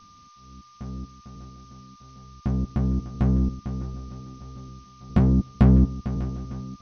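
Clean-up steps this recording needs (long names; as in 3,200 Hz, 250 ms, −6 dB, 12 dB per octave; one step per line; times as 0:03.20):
notch filter 1,200 Hz, Q 30
noise reduction from a noise print 16 dB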